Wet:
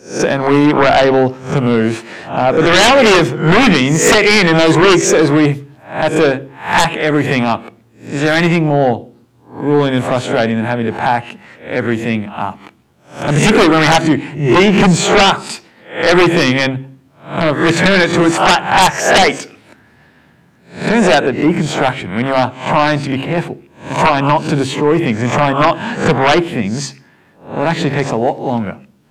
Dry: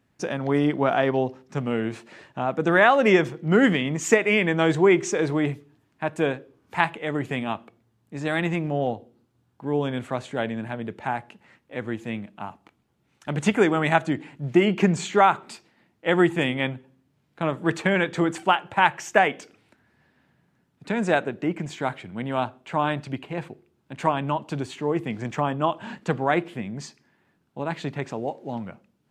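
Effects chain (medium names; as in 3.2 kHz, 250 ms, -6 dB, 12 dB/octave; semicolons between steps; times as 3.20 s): reverse spectral sustain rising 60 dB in 0.39 s; sine folder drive 15 dB, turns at -0.5 dBFS; de-hum 67.45 Hz, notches 5; trim -4 dB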